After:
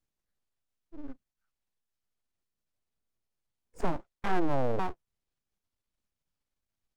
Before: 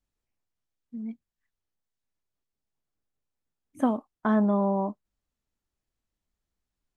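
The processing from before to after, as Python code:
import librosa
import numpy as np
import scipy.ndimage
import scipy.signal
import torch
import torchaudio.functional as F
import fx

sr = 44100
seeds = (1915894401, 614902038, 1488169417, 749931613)

y = fx.pitch_ramps(x, sr, semitones=-10.5, every_ms=599)
y = np.abs(y)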